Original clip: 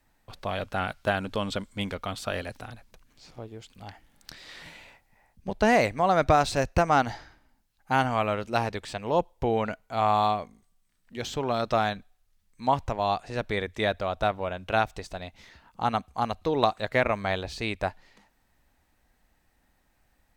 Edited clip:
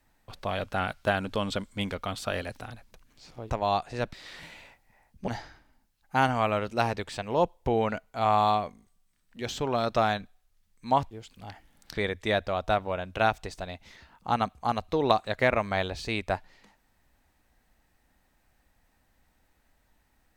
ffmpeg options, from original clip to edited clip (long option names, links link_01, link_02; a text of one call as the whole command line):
ffmpeg -i in.wav -filter_complex "[0:a]asplit=6[link_01][link_02][link_03][link_04][link_05][link_06];[link_01]atrim=end=3.502[link_07];[link_02]atrim=start=12.868:end=13.502[link_08];[link_03]atrim=start=4.358:end=5.512[link_09];[link_04]atrim=start=7.038:end=12.872[link_10];[link_05]atrim=start=3.498:end=4.362[link_11];[link_06]atrim=start=13.498[link_12];[link_07][link_08]acrossfade=duration=0.004:curve1=hsin:curve2=hsin[link_13];[link_13][link_09]acrossfade=duration=0.004:curve1=hsin:curve2=hsin[link_14];[link_14][link_10]acrossfade=duration=0.004:curve1=hsin:curve2=hsin[link_15];[link_15][link_11]acrossfade=duration=0.004:curve1=hsin:curve2=hsin[link_16];[link_16][link_12]acrossfade=duration=0.004:curve1=hsin:curve2=hsin" out.wav